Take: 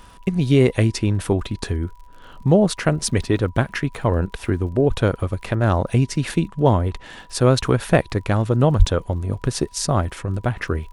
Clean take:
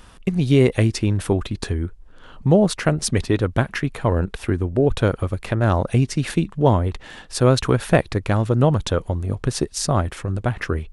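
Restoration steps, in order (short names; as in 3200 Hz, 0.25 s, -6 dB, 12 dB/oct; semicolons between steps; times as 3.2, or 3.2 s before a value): de-click; notch 980 Hz, Q 30; 8.78–8.9 HPF 140 Hz 24 dB/oct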